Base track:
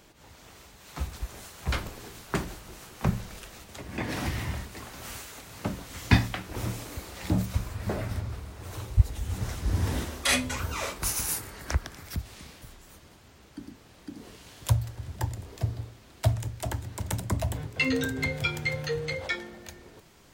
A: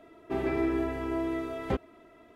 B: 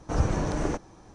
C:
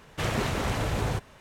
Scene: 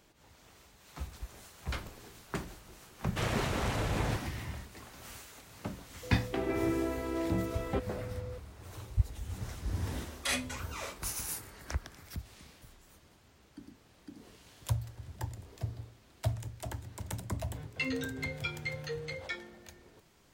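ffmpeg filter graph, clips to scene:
ffmpeg -i bed.wav -i cue0.wav -i cue1.wav -i cue2.wav -filter_complex "[0:a]volume=-8dB[link_01];[1:a]aeval=exprs='val(0)+0.0112*sin(2*PI*500*n/s)':channel_layout=same[link_02];[3:a]atrim=end=1.4,asetpts=PTS-STARTPTS,volume=-4dB,afade=type=in:duration=0.004:curve=hsin,afade=type=out:start_time=1.396:duration=0.004:curve=hsin,adelay=2980[link_03];[link_02]atrim=end=2.35,asetpts=PTS-STARTPTS,volume=-3.5dB,afade=type=in:duration=0.004:curve=hsin,afade=type=out:start_time=2.346:duration=0.004:curve=hsin,adelay=6030[link_04];[link_01][link_03][link_04]amix=inputs=3:normalize=0" out.wav

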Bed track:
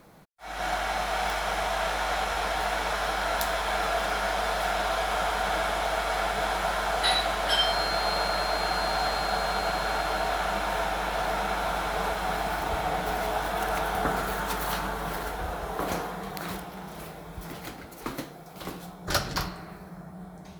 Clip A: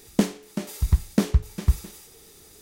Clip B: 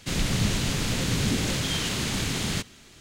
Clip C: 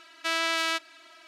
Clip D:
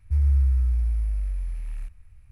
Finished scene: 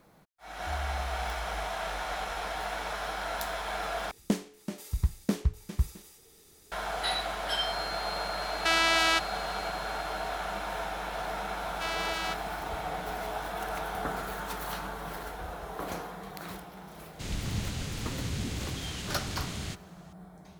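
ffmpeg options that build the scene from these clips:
ffmpeg -i bed.wav -i cue0.wav -i cue1.wav -i cue2.wav -i cue3.wav -filter_complex "[3:a]asplit=2[link_01][link_02];[0:a]volume=-6.5dB[link_03];[4:a]highpass=frequency=180:poles=1[link_04];[link_01]alimiter=level_in=16dB:limit=-1dB:release=50:level=0:latency=1[link_05];[link_02]acrusher=bits=6:mode=log:mix=0:aa=0.000001[link_06];[2:a]equalizer=frequency=70:width=1.5:gain=9.5[link_07];[link_03]asplit=2[link_08][link_09];[link_08]atrim=end=4.114[link_10];[1:a]atrim=end=2.61,asetpts=PTS-STARTPTS,volume=-7.5dB[link_11];[link_09]atrim=start=6.716[link_12];[link_04]atrim=end=2.31,asetpts=PTS-STARTPTS,volume=-7.5dB,afade=type=in:duration=0.004:curve=hsin,afade=type=out:start_time=2.306:duration=0.004:curve=hsin,adelay=560[link_13];[link_05]atrim=end=1.27,asetpts=PTS-STARTPTS,volume=-9dB,afade=type=in:duration=0.004:curve=hsin,afade=type=out:start_time=1.266:duration=0.004:curve=hsin,adelay=8410[link_14];[link_06]atrim=end=1.27,asetpts=PTS-STARTPTS,volume=-7.5dB,afade=type=in:duration=0.004:curve=hsin,afade=type=out:start_time=1.266:duration=0.004:curve=hsin,adelay=11560[link_15];[link_07]atrim=end=3,asetpts=PTS-STARTPTS,volume=-11dB,afade=type=in:duration=0.004:curve=hsin,afade=type=out:start_time=2.996:duration=0.004:curve=hsin,adelay=17130[link_16];[link_10][link_11]acrossfade=duration=0.004:curve1=hsin:curve2=hsin[link_17];[link_17][link_12]acrossfade=duration=0.004:curve1=hsin:curve2=hsin[link_18];[link_18][link_13][link_14][link_15][link_16]amix=inputs=5:normalize=0" out.wav

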